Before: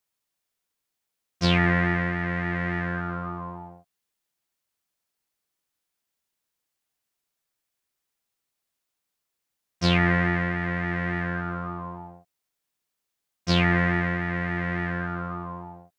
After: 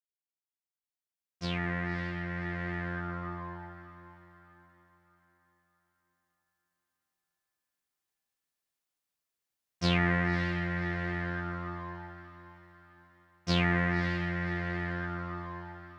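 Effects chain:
fade in at the beginning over 3.26 s
feedback delay with all-pass diffusion 575 ms, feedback 41%, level −12 dB
level −6 dB

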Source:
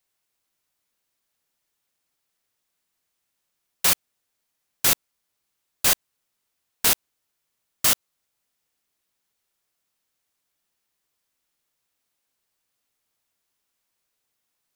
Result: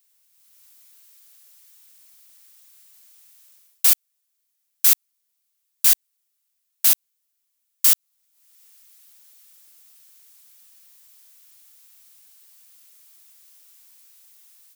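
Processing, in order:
spectral tilt +4 dB per octave
automatic gain control gain up to 12.5 dB
level −1 dB

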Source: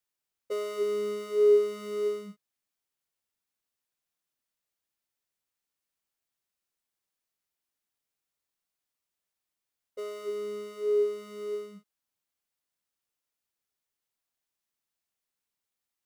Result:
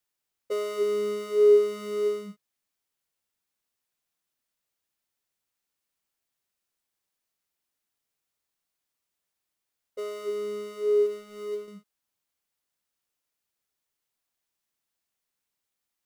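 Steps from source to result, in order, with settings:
0:11.06–0:11.68: mu-law and A-law mismatch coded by A
level +3 dB

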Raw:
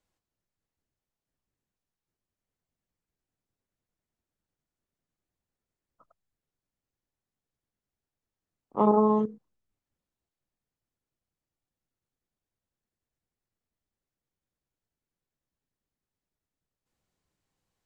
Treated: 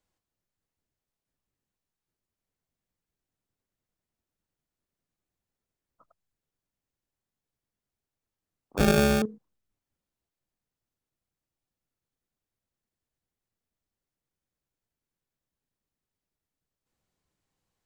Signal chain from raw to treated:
0:08.77–0:09.22: sample-rate reduction 1,000 Hz, jitter 0%

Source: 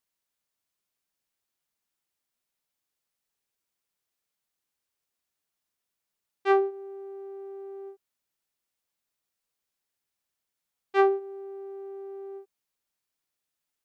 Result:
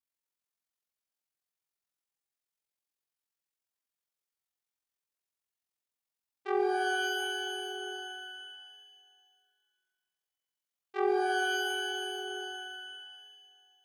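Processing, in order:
low-shelf EQ 360 Hz −4.5 dB
flutter between parallel walls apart 8.3 metres, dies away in 0.47 s
ring modulation 22 Hz
reverb with rising layers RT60 2 s, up +12 semitones, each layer −2 dB, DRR 4 dB
level −7.5 dB

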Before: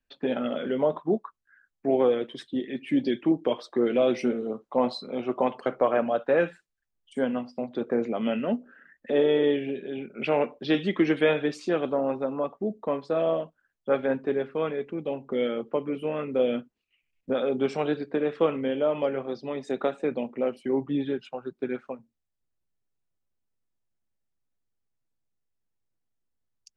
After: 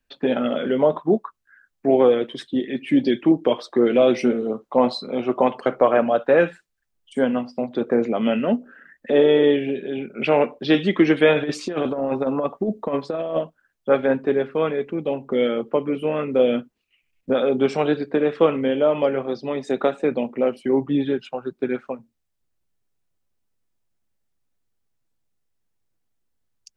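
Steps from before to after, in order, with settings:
0:11.35–0:13.39: compressor whose output falls as the input rises −28 dBFS, ratio −0.5
level +6.5 dB

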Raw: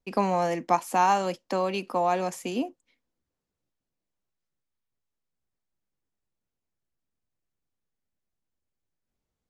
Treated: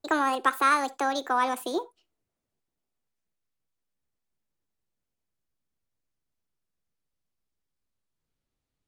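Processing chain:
gliding playback speed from 157% → 57%
on a send: convolution reverb, pre-delay 42 ms, DRR 20 dB

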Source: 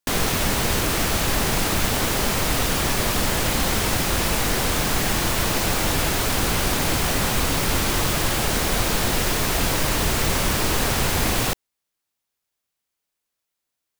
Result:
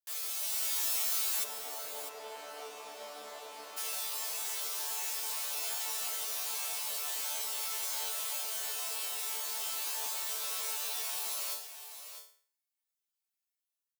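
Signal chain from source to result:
automatic gain control gain up to 8 dB
resonators tuned to a chord D3 fifth, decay 0.46 s
dynamic equaliser 1,800 Hz, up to −6 dB, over −49 dBFS, Q 1.6
high-pass filter 520 Hz 24 dB per octave
spectral tilt +4 dB per octave, from 0:01.43 −3 dB per octave, from 0:03.76 +2.5 dB per octave
single-tap delay 651 ms −10.5 dB
level −9 dB

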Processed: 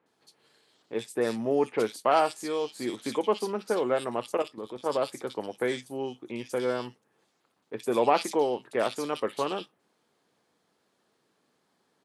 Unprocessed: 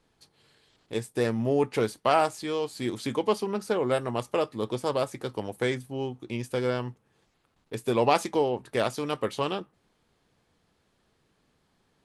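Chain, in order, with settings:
high-pass filter 240 Hz 12 dB per octave
0:04.37–0:04.86: output level in coarse steps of 12 dB
multiband delay without the direct sound lows, highs 60 ms, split 2,600 Hz

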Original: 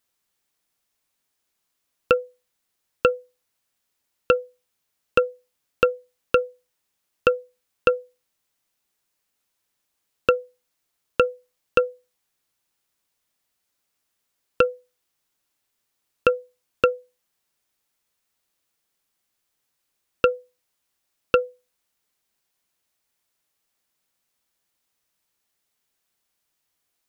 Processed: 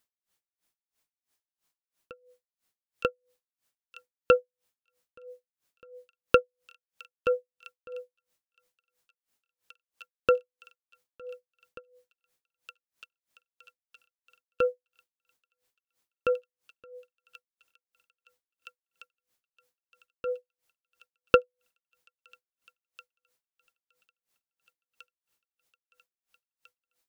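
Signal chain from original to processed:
delay with a high-pass on its return 916 ms, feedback 78%, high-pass 3,400 Hz, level −12.5 dB
tremolo with a sine in dB 3 Hz, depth 37 dB

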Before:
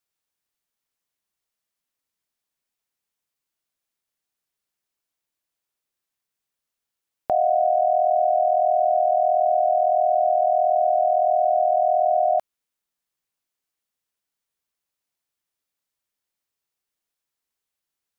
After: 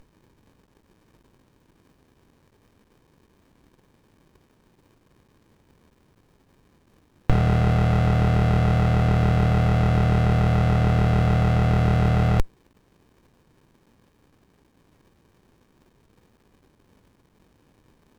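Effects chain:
boost into a limiter +36 dB
windowed peak hold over 65 samples
level −4.5 dB

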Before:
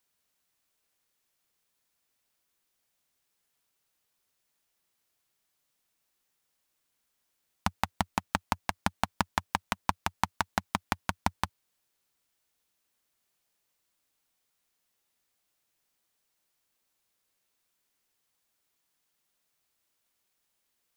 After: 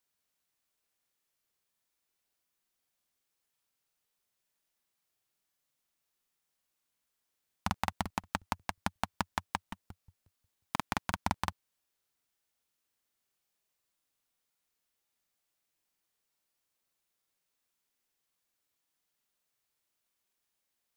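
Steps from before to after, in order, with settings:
regular buffer underruns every 0.18 s, samples 2,048, repeat, from 0:00.99
level −5 dB

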